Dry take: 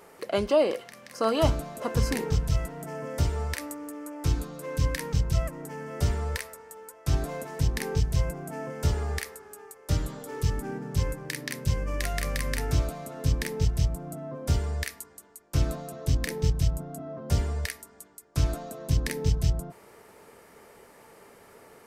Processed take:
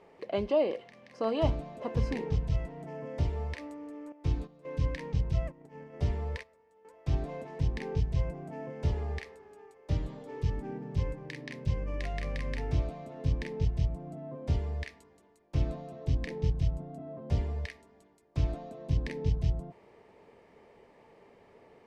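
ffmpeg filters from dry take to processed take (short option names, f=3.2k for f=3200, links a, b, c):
-filter_complex "[0:a]asettb=1/sr,asplit=3[a][b][c];[a]atrim=end=4.124[d];[b]atrim=start=4.12:end=6.85,asetpts=PTS-STARTPTS,afade=t=in:d=0.004:c=qsin,afade=t=out:st=2.726:d=0.004:c=qsin,agate=range=-12dB:threshold=-38dB:ratio=16:release=100:detection=peak[e];[c]atrim=start=6.846[f];[d][e]acrossfade=d=0.004:c1=hsin:c2=qsin[g];[g][f]acrossfade=d=0.004:c1=qsin:c2=hsin,lowpass=2.9k,equalizer=f=1.4k:w=2.8:g=-11.5,volume=-4dB"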